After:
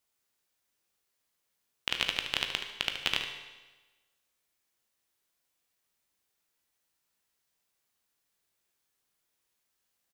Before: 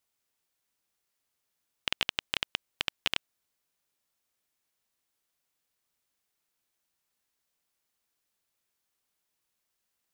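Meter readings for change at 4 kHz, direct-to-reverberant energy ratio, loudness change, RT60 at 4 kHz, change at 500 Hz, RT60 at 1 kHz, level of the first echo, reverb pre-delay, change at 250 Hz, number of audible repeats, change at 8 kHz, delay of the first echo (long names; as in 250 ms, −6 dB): +1.5 dB, 3.5 dB, +1.5 dB, 1.1 s, +1.5 dB, 1.2 s, −9.5 dB, 15 ms, +1.0 dB, 1, +1.5 dB, 74 ms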